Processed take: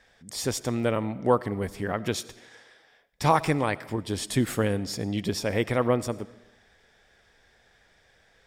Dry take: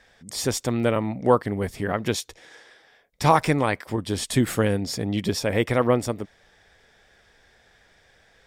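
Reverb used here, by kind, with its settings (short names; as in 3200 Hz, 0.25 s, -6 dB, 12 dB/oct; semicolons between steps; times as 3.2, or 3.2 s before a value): digital reverb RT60 0.96 s, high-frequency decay 0.85×, pre-delay 45 ms, DRR 18 dB; gain -3.5 dB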